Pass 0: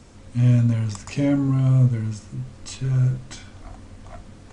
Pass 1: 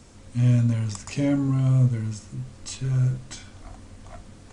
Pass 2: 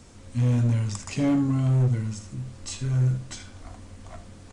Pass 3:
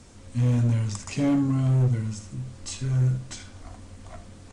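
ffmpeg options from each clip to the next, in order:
-af "highshelf=f=5.8k:g=6.5,volume=-2.5dB"
-filter_complex "[0:a]asplit=2[a][b];[b]aecho=0:1:11|78:0.15|0.211[c];[a][c]amix=inputs=2:normalize=0,asoftclip=type=hard:threshold=-17.5dB"
-ar 48000 -c:a libvorbis -b:a 64k

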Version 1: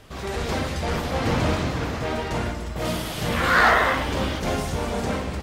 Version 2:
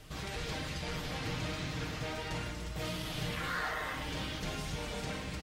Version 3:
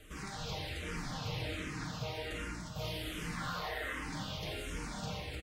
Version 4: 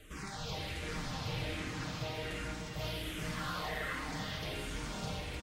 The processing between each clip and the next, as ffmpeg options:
-filter_complex "[0:a]acrossover=split=1600|5000[a][b][c];[a]acompressor=threshold=-32dB:ratio=4[d];[b]acompressor=threshold=-38dB:ratio=4[e];[c]acompressor=threshold=-53dB:ratio=4[f];[d][e][f]amix=inputs=3:normalize=0,equalizer=f=660:w=0.32:g=-7,aecho=1:1:6.5:0.48,volume=-2dB"
-filter_complex "[0:a]aecho=1:1:86:0.473,asplit=2[a][b];[b]afreqshift=-1.3[c];[a][c]amix=inputs=2:normalize=1"
-af "aecho=1:1:429:0.447"

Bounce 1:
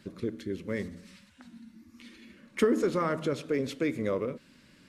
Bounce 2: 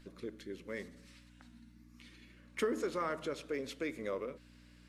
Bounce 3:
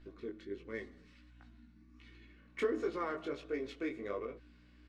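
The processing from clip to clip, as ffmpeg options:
-af "aeval=exprs='val(0)+0.00794*(sin(2*PI*60*n/s)+sin(2*PI*2*60*n/s)/2+sin(2*PI*3*60*n/s)/3+sin(2*PI*4*60*n/s)/4+sin(2*PI*5*60*n/s)/5)':c=same,equalizer=f=83:w=0.41:g=-15,volume=-5dB"
-af "aecho=1:1:2.7:0.41,flanger=delay=17.5:depth=4.9:speed=1.4,adynamicsmooth=sensitivity=6.5:basefreq=3.7k,volume=2dB"

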